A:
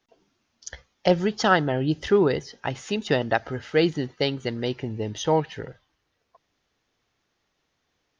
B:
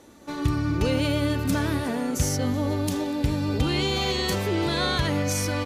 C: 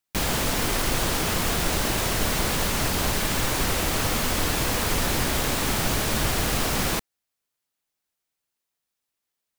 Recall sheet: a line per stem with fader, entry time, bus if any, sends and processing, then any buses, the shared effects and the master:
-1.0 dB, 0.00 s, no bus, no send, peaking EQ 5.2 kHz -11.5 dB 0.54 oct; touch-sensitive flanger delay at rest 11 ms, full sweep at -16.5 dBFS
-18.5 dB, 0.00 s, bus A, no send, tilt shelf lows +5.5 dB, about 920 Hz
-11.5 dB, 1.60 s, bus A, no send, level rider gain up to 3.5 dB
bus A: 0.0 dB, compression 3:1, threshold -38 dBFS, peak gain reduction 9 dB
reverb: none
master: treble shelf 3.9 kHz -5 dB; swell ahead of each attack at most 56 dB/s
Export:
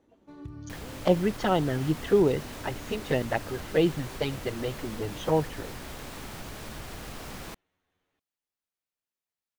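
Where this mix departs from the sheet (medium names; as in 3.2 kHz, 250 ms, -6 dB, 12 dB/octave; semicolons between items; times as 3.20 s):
stem C: entry 1.60 s -> 0.55 s; master: missing swell ahead of each attack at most 56 dB/s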